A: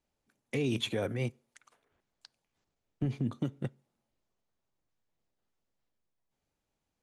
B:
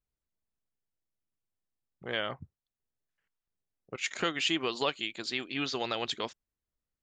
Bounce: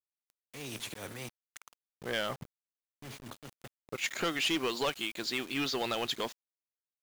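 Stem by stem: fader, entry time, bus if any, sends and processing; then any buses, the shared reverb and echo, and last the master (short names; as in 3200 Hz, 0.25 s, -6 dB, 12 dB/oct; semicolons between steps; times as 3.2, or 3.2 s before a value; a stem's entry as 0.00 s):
-6.0 dB, 0.00 s, no send, auto swell 0.102 s; spectral compressor 2:1
+2.5 dB, 0.00 s, no send, bell 84 Hz -13 dB 0.21 oct; soft clip -27 dBFS, distortion -11 dB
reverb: off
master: bit-crush 8-bit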